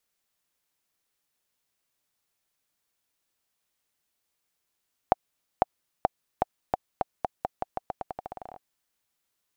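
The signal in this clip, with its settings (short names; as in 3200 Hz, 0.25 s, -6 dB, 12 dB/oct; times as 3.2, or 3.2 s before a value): bouncing ball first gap 0.50 s, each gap 0.86, 746 Hz, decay 22 ms -5 dBFS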